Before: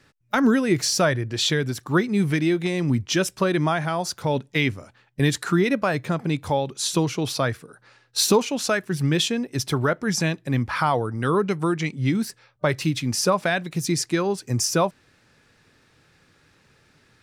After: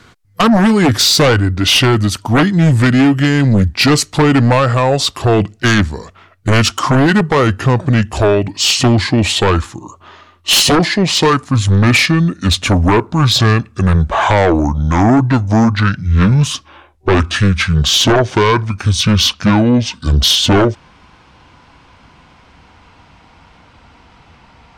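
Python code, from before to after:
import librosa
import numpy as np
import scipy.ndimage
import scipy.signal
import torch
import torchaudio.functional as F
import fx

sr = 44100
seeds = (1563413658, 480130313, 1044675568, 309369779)

y = fx.speed_glide(x, sr, from_pct=84, to_pct=55)
y = fx.fold_sine(y, sr, drive_db=9, ceiling_db=-7.5)
y = F.gain(torch.from_numpy(y), 1.5).numpy()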